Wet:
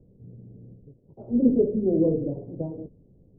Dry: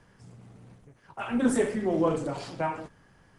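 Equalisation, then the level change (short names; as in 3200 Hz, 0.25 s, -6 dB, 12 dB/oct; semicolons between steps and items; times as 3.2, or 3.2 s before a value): steep low-pass 510 Hz 36 dB/oct; +5.0 dB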